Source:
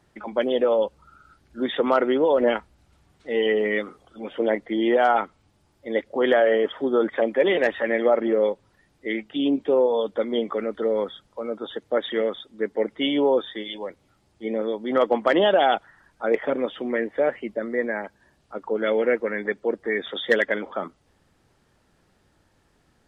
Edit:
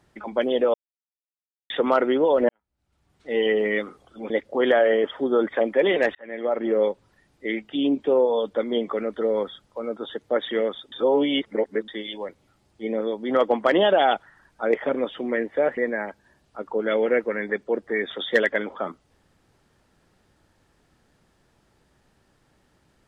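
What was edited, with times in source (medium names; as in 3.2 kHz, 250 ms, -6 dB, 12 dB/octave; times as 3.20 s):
0.74–1.70 s: mute
2.49–3.34 s: fade in quadratic
4.30–5.91 s: delete
7.76–8.40 s: fade in
12.53–13.49 s: reverse
17.38–17.73 s: delete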